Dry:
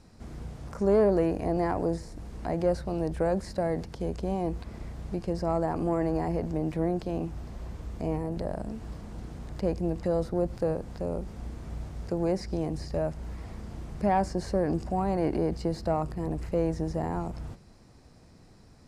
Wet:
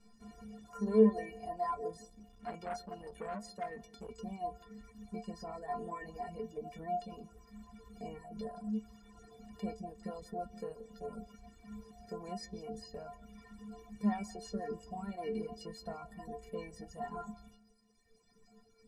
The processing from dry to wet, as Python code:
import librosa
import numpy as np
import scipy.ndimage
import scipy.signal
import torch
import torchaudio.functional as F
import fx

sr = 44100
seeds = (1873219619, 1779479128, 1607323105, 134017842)

y = fx.stiff_resonator(x, sr, f0_hz=210.0, decay_s=0.63, stiffness=0.03)
y = fx.echo_feedback(y, sr, ms=171, feedback_pct=16, wet_db=-11.0)
y = fx.dereverb_blind(y, sr, rt60_s=1.5)
y = fx.transformer_sat(y, sr, knee_hz=840.0, at=(2.04, 4.1))
y = F.gain(torch.from_numpy(y), 10.0).numpy()